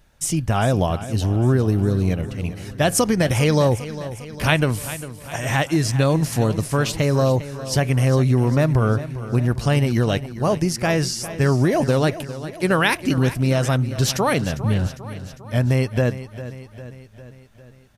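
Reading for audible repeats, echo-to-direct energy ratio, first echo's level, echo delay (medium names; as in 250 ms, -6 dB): 5, -12.0 dB, -14.0 dB, 402 ms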